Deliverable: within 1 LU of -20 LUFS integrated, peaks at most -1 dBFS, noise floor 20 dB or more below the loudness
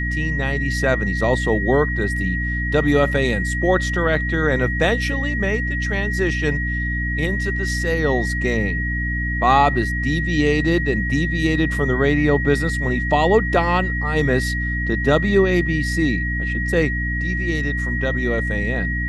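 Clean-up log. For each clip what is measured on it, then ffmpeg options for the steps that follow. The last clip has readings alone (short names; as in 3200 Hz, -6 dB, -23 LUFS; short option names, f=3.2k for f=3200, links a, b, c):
hum 60 Hz; harmonics up to 300 Hz; hum level -22 dBFS; steady tone 1900 Hz; tone level -24 dBFS; loudness -19.5 LUFS; peak -2.5 dBFS; loudness target -20.0 LUFS
-> -af "bandreject=f=60:t=h:w=6,bandreject=f=120:t=h:w=6,bandreject=f=180:t=h:w=6,bandreject=f=240:t=h:w=6,bandreject=f=300:t=h:w=6"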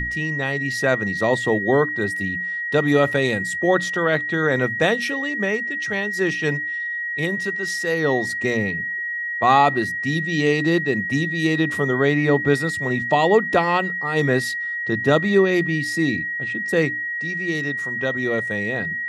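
hum none; steady tone 1900 Hz; tone level -24 dBFS
-> -af "bandreject=f=1.9k:w=30"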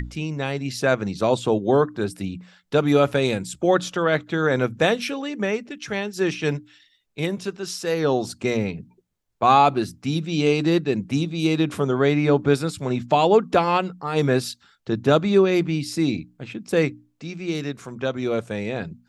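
steady tone none; loudness -22.5 LUFS; peak -4.5 dBFS; loudness target -20.0 LUFS
-> -af "volume=2.5dB"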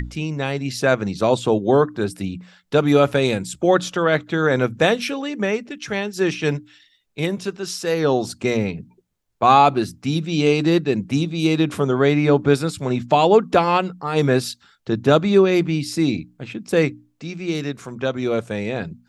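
loudness -20.0 LUFS; peak -2.0 dBFS; noise floor -63 dBFS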